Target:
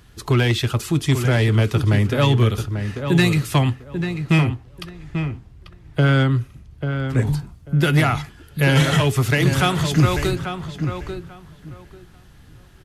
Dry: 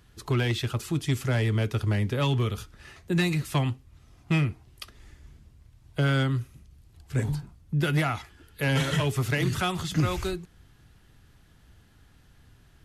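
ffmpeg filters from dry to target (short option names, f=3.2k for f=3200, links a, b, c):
-filter_complex "[0:a]asettb=1/sr,asplit=3[a][b][c];[a]atrim=end=4.494[d];[b]atrim=start=4.49:end=7.27,asetpts=PTS-STARTPTS,afade=t=in:d=0.004:c=qsin,afade=t=out:st=2.776:d=0.004:c=qsin,highshelf=f=4.7k:g=-9.5[e];[c]atrim=start=7.266[f];[d][e]acrossfade=d=0.004:c1=hsin:c2=qsin[g];[g][f]acrossfade=d=0.004:c1=qsin:c2=hsin,asplit=2[h][i];[i]adelay=841,lowpass=f=2.2k:p=1,volume=-7.5dB,asplit=2[j][k];[k]adelay=841,lowpass=f=2.2k:p=1,volume=0.2,asplit=2[l][m];[m]adelay=841,lowpass=f=2.2k:p=1,volume=0.2[n];[h][j][l][n]amix=inputs=4:normalize=0,volume=8dB"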